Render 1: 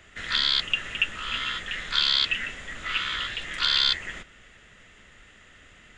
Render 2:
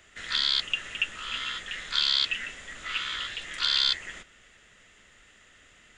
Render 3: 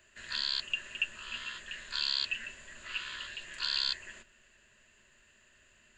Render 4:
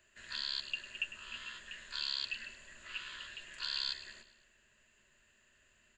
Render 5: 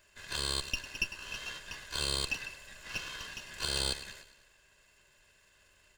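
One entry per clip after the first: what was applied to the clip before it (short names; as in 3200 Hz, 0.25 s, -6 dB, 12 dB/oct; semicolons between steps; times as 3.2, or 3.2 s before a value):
tone controls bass -4 dB, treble +6 dB; gain -4.5 dB
ripple EQ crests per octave 1.4, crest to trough 10 dB; gain -8.5 dB
feedback echo 0.102 s, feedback 51%, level -14 dB; gain -5.5 dB
minimum comb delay 1.9 ms; gain +6 dB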